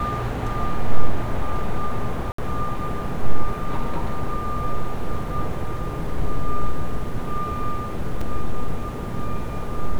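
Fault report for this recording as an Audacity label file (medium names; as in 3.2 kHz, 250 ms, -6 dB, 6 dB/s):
2.320000	2.380000	dropout 64 ms
8.210000	8.210000	dropout 4 ms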